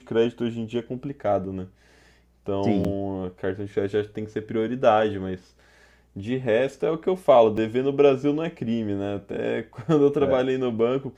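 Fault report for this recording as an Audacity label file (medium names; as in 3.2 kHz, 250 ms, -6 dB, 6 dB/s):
2.840000	2.850000	dropout 5.7 ms
7.570000	7.570000	dropout 4.8 ms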